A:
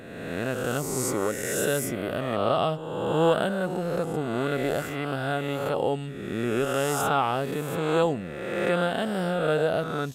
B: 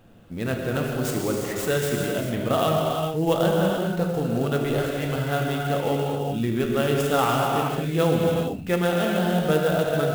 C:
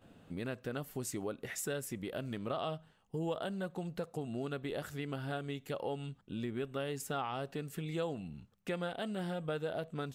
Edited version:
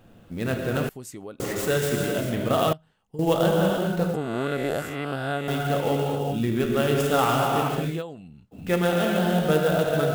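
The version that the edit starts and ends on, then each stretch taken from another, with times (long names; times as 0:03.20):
B
0:00.89–0:01.40: punch in from C
0:02.73–0:03.19: punch in from C
0:04.14–0:05.48: punch in from A
0:07.95–0:08.59: punch in from C, crossfade 0.16 s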